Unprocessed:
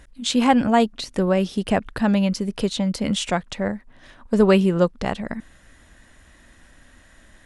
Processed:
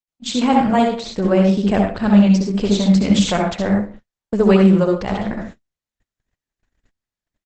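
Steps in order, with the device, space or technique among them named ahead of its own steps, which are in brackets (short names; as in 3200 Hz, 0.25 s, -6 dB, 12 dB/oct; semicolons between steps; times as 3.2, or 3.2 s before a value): speakerphone in a meeting room (reverb RT60 0.45 s, pre-delay 60 ms, DRR 1 dB; speakerphone echo 0.12 s, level -28 dB; AGC gain up to 9 dB; gate -31 dBFS, range -54 dB; gain -1 dB; Opus 12 kbps 48000 Hz)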